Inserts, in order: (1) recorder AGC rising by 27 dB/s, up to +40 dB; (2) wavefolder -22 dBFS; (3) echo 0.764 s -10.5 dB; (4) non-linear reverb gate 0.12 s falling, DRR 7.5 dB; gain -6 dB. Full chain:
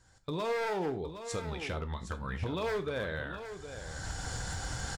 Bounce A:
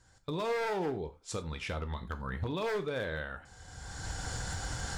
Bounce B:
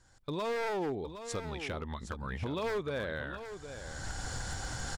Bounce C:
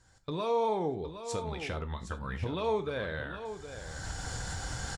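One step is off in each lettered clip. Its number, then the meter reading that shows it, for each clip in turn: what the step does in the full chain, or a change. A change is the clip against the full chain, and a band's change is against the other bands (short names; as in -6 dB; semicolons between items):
3, echo-to-direct -5.5 dB to -7.5 dB; 4, echo-to-direct -5.5 dB to -10.5 dB; 2, distortion -9 dB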